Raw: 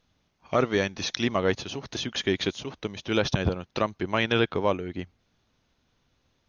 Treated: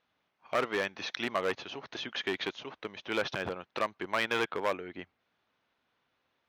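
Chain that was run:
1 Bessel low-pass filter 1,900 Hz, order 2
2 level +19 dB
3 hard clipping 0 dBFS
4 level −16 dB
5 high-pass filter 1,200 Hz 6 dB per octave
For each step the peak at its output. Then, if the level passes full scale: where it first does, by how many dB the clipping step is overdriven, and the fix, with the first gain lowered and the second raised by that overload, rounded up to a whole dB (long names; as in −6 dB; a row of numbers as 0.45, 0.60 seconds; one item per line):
−10.5, +8.5, 0.0, −16.0, −13.5 dBFS
step 2, 8.5 dB
step 2 +10 dB, step 4 −7 dB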